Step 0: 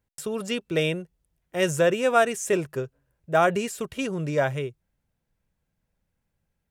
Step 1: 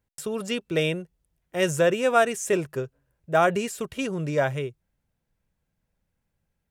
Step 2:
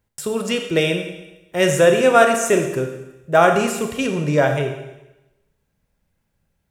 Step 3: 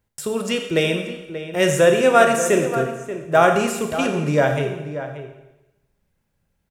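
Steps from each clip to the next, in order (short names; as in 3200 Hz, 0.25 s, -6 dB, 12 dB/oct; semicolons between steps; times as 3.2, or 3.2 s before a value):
nothing audible
Schroeder reverb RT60 0.98 s, combs from 27 ms, DRR 4.5 dB; gain +6 dB
outdoor echo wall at 100 m, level -11 dB; gain -1 dB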